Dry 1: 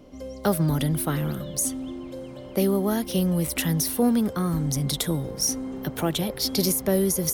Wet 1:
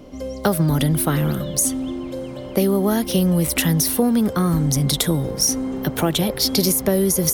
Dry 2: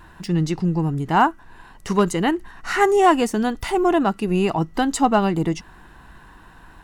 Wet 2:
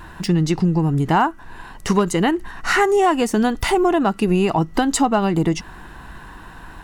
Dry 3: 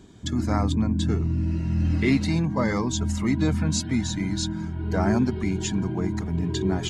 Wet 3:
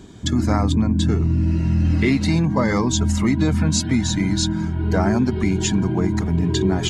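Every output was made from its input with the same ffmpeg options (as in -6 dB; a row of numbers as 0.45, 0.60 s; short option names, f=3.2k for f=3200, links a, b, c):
-af "acompressor=threshold=-21dB:ratio=6,volume=7.5dB"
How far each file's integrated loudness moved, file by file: +5.5, +1.5, +5.5 LU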